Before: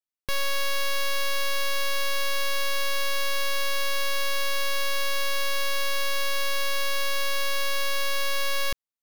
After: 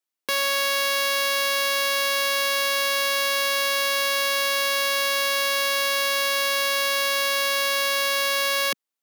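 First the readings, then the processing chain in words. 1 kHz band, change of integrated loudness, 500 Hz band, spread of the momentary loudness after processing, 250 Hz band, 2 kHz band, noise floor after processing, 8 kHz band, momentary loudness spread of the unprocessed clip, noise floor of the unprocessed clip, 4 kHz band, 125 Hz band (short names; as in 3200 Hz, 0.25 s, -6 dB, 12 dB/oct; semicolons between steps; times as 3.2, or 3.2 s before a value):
+6.0 dB, +6.0 dB, +6.0 dB, 0 LU, +5.0 dB, +6.0 dB, under -85 dBFS, +6.0 dB, 0 LU, under -85 dBFS, +6.0 dB, n/a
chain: HPF 220 Hz 24 dB/oct; gain +6 dB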